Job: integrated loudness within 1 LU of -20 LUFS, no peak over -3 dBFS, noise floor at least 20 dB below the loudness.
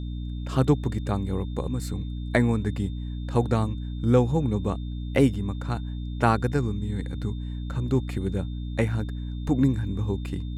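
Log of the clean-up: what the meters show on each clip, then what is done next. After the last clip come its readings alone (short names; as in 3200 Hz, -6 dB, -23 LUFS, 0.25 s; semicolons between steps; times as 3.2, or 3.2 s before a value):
hum 60 Hz; harmonics up to 300 Hz; hum level -29 dBFS; steady tone 3600 Hz; tone level -52 dBFS; loudness -27.0 LUFS; peak -6.5 dBFS; loudness target -20.0 LUFS
-> de-hum 60 Hz, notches 5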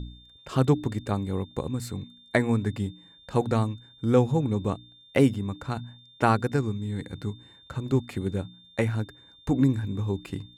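hum none; steady tone 3600 Hz; tone level -52 dBFS
-> notch 3600 Hz, Q 30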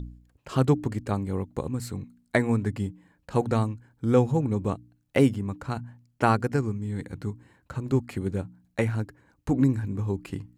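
steady tone none; loudness -27.5 LUFS; peak -7.5 dBFS; loudness target -20.0 LUFS
-> gain +7.5 dB; limiter -3 dBFS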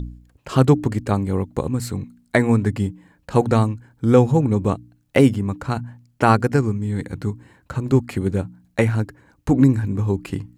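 loudness -20.5 LUFS; peak -3.0 dBFS; noise floor -62 dBFS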